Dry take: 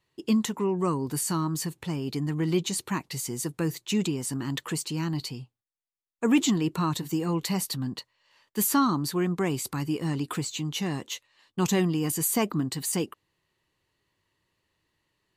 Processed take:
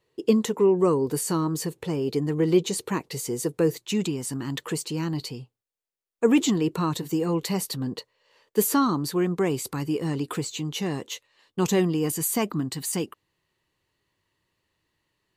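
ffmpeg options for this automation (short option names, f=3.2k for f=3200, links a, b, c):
-af "asetnsamples=n=441:p=0,asendcmd='3.77 equalizer g 2.5;4.59 equalizer g 8.5;7.81 equalizer g 15;8.74 equalizer g 7.5;12.17 equalizer g 0.5',equalizer=f=460:t=o:w=0.69:g=14"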